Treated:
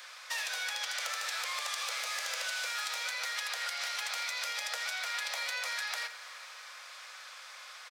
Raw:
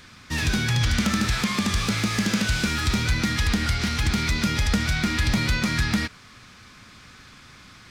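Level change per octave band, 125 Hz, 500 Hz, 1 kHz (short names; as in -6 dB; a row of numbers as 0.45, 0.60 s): under -40 dB, -13.5 dB, -8.0 dB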